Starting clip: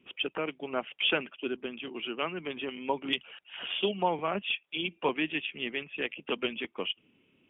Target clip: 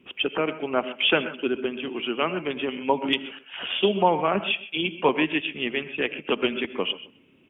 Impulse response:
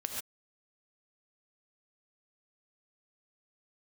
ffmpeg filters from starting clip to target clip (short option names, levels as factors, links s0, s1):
-filter_complex "[0:a]asplit=2[s0][s1];[s1]adelay=129,lowpass=f=1700:p=1,volume=0.178,asplit=2[s2][s3];[s3]adelay=129,lowpass=f=1700:p=1,volume=0.23[s4];[s0][s2][s4]amix=inputs=3:normalize=0,asplit=2[s5][s6];[1:a]atrim=start_sample=2205,lowpass=2200[s7];[s6][s7]afir=irnorm=-1:irlink=0,volume=0.335[s8];[s5][s8]amix=inputs=2:normalize=0,volume=2"